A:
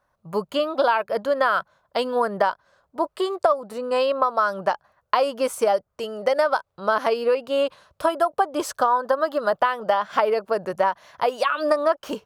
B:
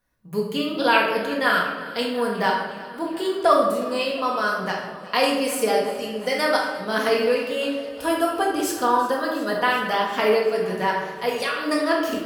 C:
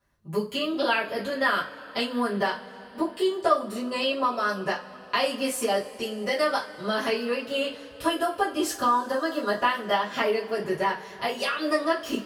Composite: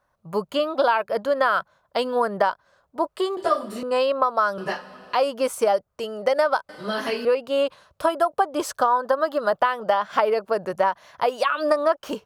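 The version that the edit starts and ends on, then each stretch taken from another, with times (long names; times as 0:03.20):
A
0:03.37–0:03.83: punch in from C
0:04.58–0:05.15: punch in from C
0:06.69–0:07.25: punch in from C
not used: B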